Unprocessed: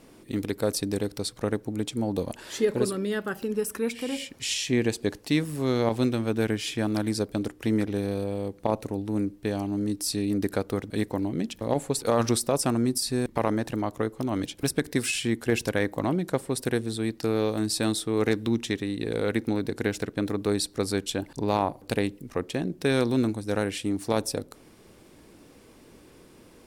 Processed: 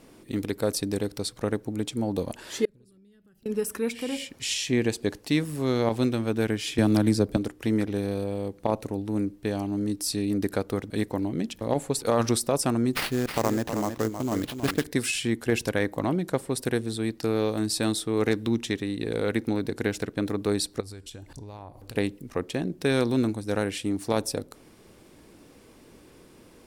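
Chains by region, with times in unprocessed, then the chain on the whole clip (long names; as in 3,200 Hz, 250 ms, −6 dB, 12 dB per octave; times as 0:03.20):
0:02.65–0:03.46: guitar amp tone stack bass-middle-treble 10-0-1 + downward compressor 5 to 1, threshold −55 dBFS
0:06.78–0:07.37: low-shelf EQ 500 Hz +7 dB + multiband upward and downward compressor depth 70%
0:12.93–0:14.84: sample-rate reduction 7,100 Hz, jitter 20% + single-tap delay 317 ms −8 dB
0:20.80–0:21.95: low shelf with overshoot 130 Hz +8 dB, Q 1.5 + downward compressor 8 to 1, threshold −38 dBFS + hum removal 358.6 Hz, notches 32
whole clip: no processing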